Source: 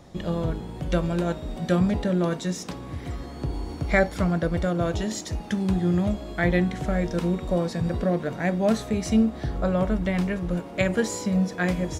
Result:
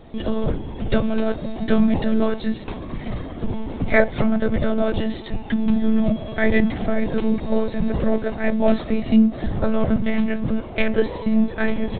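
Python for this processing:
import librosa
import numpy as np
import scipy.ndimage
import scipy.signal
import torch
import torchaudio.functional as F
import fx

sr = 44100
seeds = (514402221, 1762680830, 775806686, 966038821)

y = fx.peak_eq(x, sr, hz=1300.0, db=-3.0, octaves=0.85)
y = fx.lpc_monotone(y, sr, seeds[0], pitch_hz=220.0, order=16)
y = y * 10.0 ** (5.5 / 20.0)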